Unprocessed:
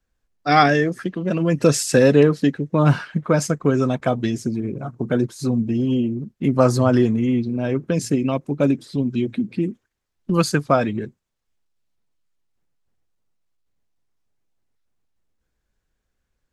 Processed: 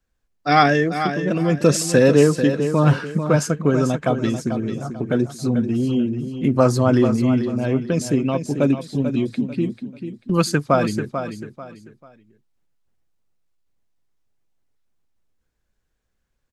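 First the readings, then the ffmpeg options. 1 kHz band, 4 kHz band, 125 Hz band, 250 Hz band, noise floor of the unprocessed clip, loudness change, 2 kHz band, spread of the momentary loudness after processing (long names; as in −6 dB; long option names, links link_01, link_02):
+0.5 dB, +0.5 dB, +0.5 dB, +0.5 dB, −77 dBFS, +0.5 dB, +0.5 dB, 12 LU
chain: -af "aecho=1:1:441|882|1323:0.355|0.103|0.0298"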